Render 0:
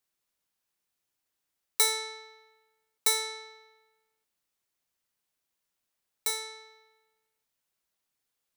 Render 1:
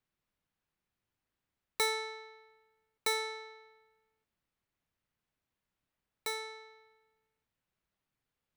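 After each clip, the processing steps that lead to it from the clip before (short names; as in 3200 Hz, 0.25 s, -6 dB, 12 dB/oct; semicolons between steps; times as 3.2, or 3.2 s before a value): tone controls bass +10 dB, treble -13 dB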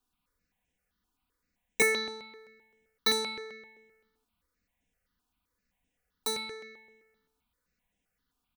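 octaver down 1 oct, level -4 dB; comb 4.1 ms, depth 70%; step phaser 7.7 Hz 550–4400 Hz; gain +6.5 dB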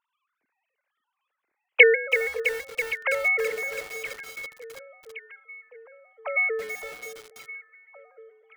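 sine-wave speech; echo with dull and thin repeats by turns 0.56 s, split 1300 Hz, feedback 74%, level -13.5 dB; lo-fi delay 0.329 s, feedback 80%, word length 7-bit, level -9 dB; gain +9 dB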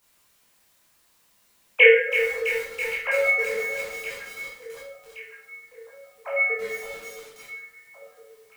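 added noise white -64 dBFS; reverb RT60 0.55 s, pre-delay 13 ms, DRR -7 dB; gain -6 dB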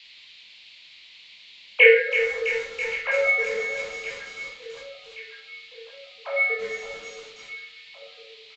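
band noise 2100–4400 Hz -49 dBFS; downsampling 16000 Hz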